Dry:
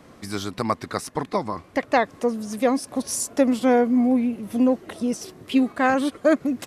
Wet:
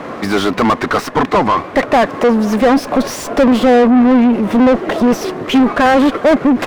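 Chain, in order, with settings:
high-shelf EQ 4,400 Hz −7.5 dB
mid-hump overdrive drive 32 dB, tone 1,300 Hz, clips at −6 dBFS
windowed peak hold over 3 samples
level +4 dB

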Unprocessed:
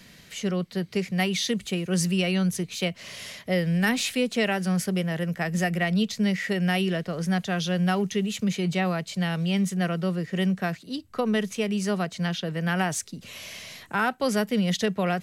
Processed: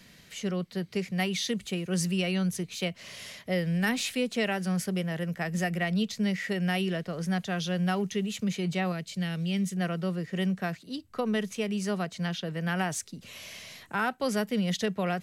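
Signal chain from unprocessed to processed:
0:08.92–0:09.77: parametric band 920 Hz −9 dB 1.2 octaves
level −4 dB

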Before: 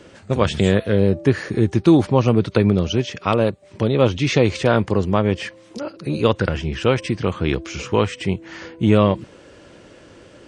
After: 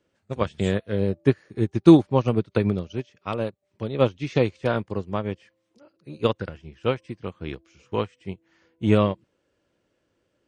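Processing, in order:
expander for the loud parts 2.5 to 1, over −28 dBFS
level +2 dB

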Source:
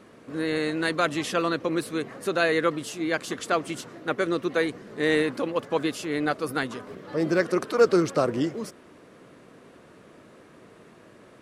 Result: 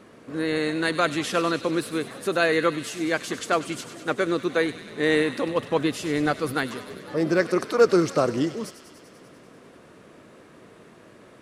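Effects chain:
0:05.48–0:06.54: low-shelf EQ 130 Hz +10 dB
delay with a high-pass on its return 98 ms, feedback 76%, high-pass 2,500 Hz, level −10 dB
level +1.5 dB

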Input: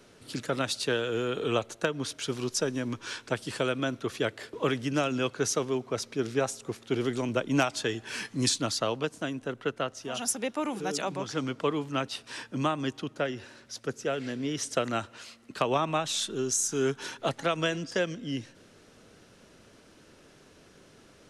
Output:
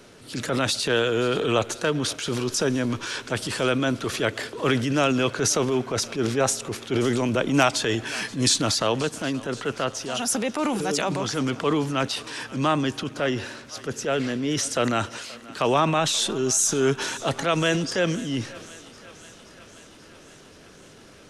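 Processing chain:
transient designer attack −6 dB, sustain +6 dB
feedback echo with a high-pass in the loop 529 ms, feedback 71%, high-pass 490 Hz, level −19 dB
level +7 dB

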